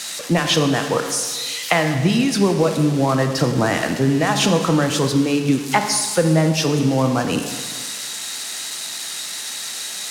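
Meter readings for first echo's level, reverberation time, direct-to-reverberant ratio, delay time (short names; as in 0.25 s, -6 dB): none, 1.7 s, 5.0 dB, none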